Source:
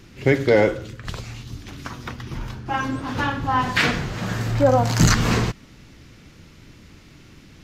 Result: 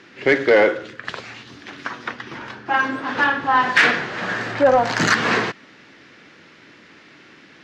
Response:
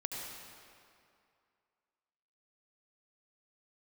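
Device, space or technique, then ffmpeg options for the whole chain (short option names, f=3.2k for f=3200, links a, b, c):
intercom: -af "highpass=330,lowpass=4.1k,equalizer=f=1.7k:t=o:w=0.51:g=6.5,asoftclip=type=tanh:threshold=-10dB,volume=4.5dB"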